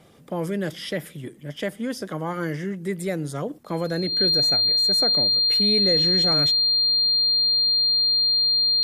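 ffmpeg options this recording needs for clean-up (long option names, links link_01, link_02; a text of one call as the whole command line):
ffmpeg -i in.wav -af "bandreject=frequency=4200:width=30" out.wav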